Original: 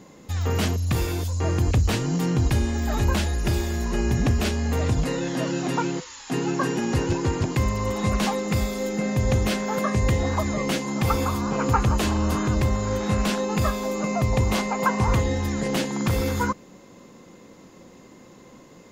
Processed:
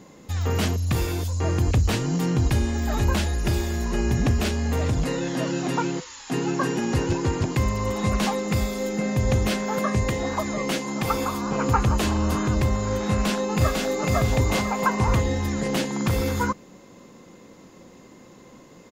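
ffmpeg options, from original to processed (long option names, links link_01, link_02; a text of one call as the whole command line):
ffmpeg -i in.wav -filter_complex "[0:a]asettb=1/sr,asplit=3[link_01][link_02][link_03];[link_01]atrim=end=4.434[link_04];[link_02]atrim=start=4.43:end=5.01,asetpts=PTS-STARTPTS,afade=type=in:duration=0.004:curve=qsin,afade=type=out:start_time=0.576:duration=0.004:curve=qsin,volume=18dB,asoftclip=hard,volume=-18dB[link_05];[link_03]atrim=start=5.006[link_06];[link_04][link_05]acrossfade=duration=0.004:curve1=hsin:curve2=qsin[link_07];[link_07][link_06]acrossfade=duration=0.004:curve1=qsin:curve2=hsin,asettb=1/sr,asplit=3[link_08][link_09][link_10];[link_08]atrim=end=10.034[link_11];[link_09]atrim=start=10.03:end=11.51,asetpts=PTS-STARTPTS,afade=type=in:duration=0.004:curve=qsin,afade=type=out:start_time=1.476:duration=0.004:curve=qsin,equalizer=frequency=74:width_type=o:width=1.4:gain=-12[link_12];[link_10]atrim=start=11.506[link_13];[link_11][link_12]acrossfade=duration=0.004:curve1=hsin:curve2=qsin[link_14];[link_14][link_13]acrossfade=duration=0.004:curve1=qsin:curve2=hsin,asplit=2[link_15][link_16];[link_16]afade=type=in:start_time=13.1:duration=0.01,afade=type=out:start_time=14.08:duration=0.01,aecho=0:1:500|1000|1500|2000|2500:0.841395|0.294488|0.103071|0.0360748|0.0126262[link_17];[link_15][link_17]amix=inputs=2:normalize=0" out.wav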